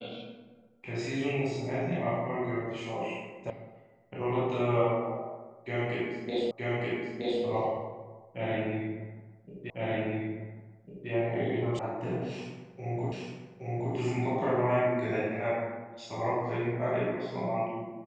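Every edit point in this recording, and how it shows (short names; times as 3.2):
3.5 sound cut off
6.51 repeat of the last 0.92 s
9.7 repeat of the last 1.4 s
11.79 sound cut off
13.12 repeat of the last 0.82 s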